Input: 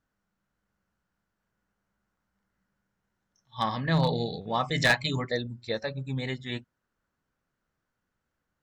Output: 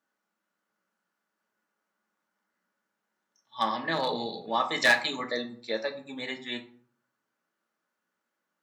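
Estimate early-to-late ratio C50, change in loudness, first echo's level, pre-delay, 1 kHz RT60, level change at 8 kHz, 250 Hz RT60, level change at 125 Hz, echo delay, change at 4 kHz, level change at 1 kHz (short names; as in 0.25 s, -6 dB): 12.0 dB, -0.5 dB, none, 3 ms, 0.55 s, +0.5 dB, 0.65 s, -18.5 dB, none, +1.0 dB, +1.5 dB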